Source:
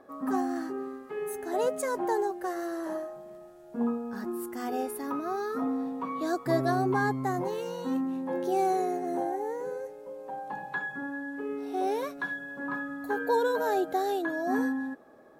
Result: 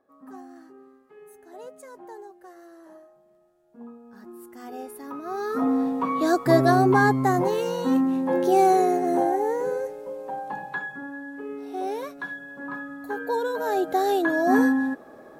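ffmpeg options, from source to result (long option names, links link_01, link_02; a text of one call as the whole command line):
ffmpeg -i in.wav -af "volume=18dB,afade=type=in:start_time=3.92:duration=1.3:silence=0.281838,afade=type=in:start_time=5.22:duration=0.55:silence=0.266073,afade=type=out:start_time=9.78:duration=1.23:silence=0.354813,afade=type=in:start_time=13.55:duration=0.84:silence=0.334965" out.wav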